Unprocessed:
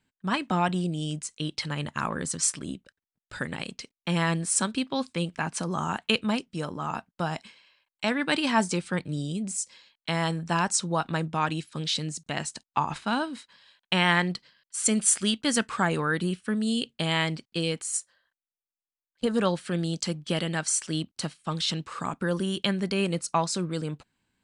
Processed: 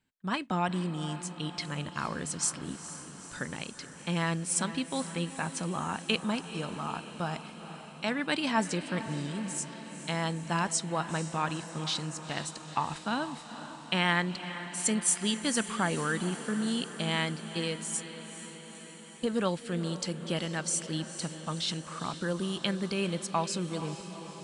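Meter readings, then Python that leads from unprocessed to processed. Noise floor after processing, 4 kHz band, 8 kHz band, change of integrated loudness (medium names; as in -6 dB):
-47 dBFS, -4.0 dB, -4.0 dB, -4.5 dB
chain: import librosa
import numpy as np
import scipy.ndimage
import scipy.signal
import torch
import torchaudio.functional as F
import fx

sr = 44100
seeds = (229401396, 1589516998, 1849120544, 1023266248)

y = fx.echo_diffused(x, sr, ms=465, feedback_pct=68, wet_db=-12.0)
y = y * 10.0 ** (-4.5 / 20.0)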